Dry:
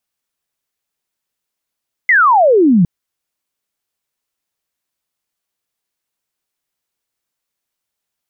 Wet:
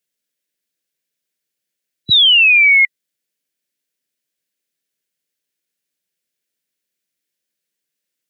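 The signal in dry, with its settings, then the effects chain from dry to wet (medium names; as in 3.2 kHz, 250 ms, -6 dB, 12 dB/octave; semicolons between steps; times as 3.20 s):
laser zap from 2.1 kHz, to 160 Hz, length 0.76 s sine, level -6.5 dB
split-band scrambler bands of 2 kHz; high-pass 130 Hz 24 dB/octave; high-order bell 950 Hz -12.5 dB 1.1 oct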